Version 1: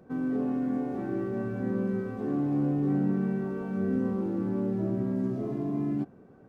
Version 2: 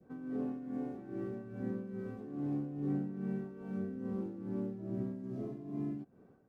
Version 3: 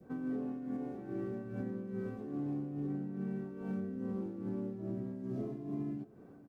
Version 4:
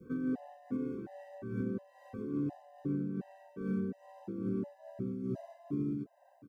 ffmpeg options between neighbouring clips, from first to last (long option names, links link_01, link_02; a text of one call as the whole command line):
ffmpeg -i in.wav -af "tremolo=f=2.4:d=0.65,adynamicequalizer=threshold=0.00282:dfrequency=1100:dqfactor=0.8:tfrequency=1100:tqfactor=0.8:attack=5:release=100:ratio=0.375:range=2:mode=cutabove:tftype=bell,volume=-6.5dB" out.wav
ffmpeg -i in.wav -af "alimiter=level_in=11.5dB:limit=-24dB:level=0:latency=1:release=458,volume=-11.5dB,aecho=1:1:625:0.0891,volume=5.5dB" out.wav
ffmpeg -i in.wav -af "afftfilt=real='re*gt(sin(2*PI*1.4*pts/sr)*(1-2*mod(floor(b*sr/1024/520),2)),0)':imag='im*gt(sin(2*PI*1.4*pts/sr)*(1-2*mod(floor(b*sr/1024/520),2)),0)':win_size=1024:overlap=0.75,volume=4dB" out.wav